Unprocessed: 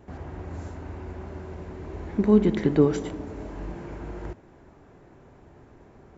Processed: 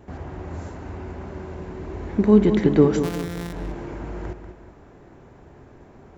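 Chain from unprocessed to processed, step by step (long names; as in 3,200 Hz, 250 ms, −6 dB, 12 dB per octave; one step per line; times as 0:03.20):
0:03.03–0:03.53: samples sorted by size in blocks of 256 samples
on a send: feedback echo with a low-pass in the loop 191 ms, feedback 40%, low-pass 4,900 Hz, level −9 dB
on the sum: level +3.5 dB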